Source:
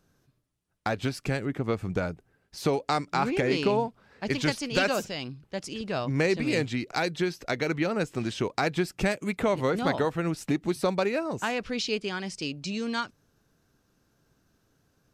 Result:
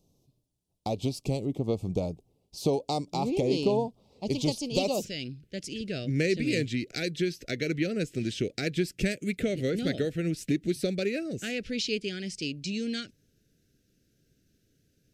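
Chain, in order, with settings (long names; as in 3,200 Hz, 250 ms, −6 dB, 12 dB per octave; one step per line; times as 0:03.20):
Butterworth band-reject 1,600 Hz, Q 0.65, from 0:05.01 980 Hz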